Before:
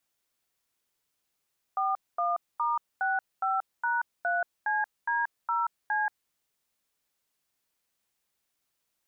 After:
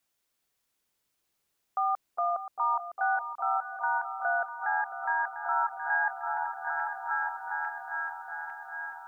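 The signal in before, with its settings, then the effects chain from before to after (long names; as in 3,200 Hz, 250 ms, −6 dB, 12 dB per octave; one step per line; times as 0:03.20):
touch tones "41*65#3CD0C", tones 181 ms, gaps 232 ms, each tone −27.5 dBFS
feedback delay that plays each chunk backwards 425 ms, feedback 77%, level −11 dB
echo whose low-pass opens from repeat to repeat 403 ms, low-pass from 400 Hz, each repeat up 1 octave, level −3 dB
speech leveller within 4 dB 2 s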